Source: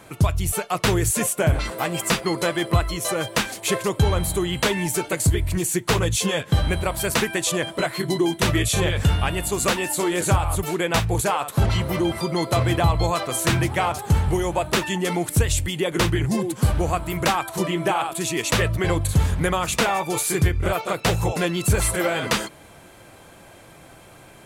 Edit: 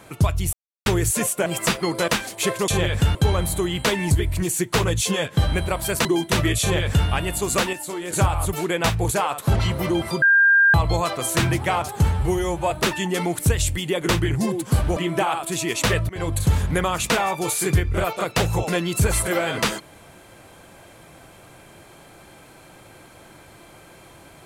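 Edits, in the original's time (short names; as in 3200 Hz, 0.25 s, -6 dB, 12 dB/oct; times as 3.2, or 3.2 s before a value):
0.53–0.86 mute
1.46–1.89 cut
2.51–3.33 cut
4.89–5.26 cut
7.2–8.15 cut
8.71–9.18 copy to 3.93
9.83–10.23 gain -7.5 dB
12.32–12.84 bleep 1600 Hz -11.5 dBFS
14.22–14.61 stretch 1.5×
16.87–17.65 cut
18.78–19.04 fade in, from -20 dB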